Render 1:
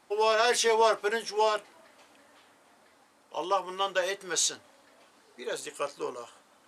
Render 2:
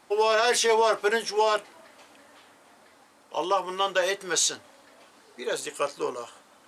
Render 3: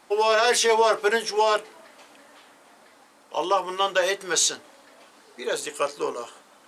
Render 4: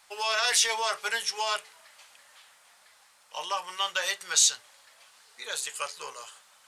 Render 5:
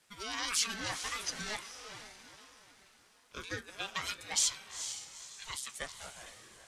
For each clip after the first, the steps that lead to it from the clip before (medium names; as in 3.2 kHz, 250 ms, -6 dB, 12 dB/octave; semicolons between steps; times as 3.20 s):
peak limiter -18 dBFS, peak gain reduction 5.5 dB; trim +5 dB
peaking EQ 95 Hz -9.5 dB 0.72 oct; de-hum 62.35 Hz, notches 7; trim +2.5 dB
amplifier tone stack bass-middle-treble 10-0-10; trim +1.5 dB
echo that smears into a reverb 451 ms, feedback 41%, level -8 dB; harmonic-percussive split harmonic -6 dB; ring modulator with a swept carrier 530 Hz, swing 30%, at 1.4 Hz; trim -4 dB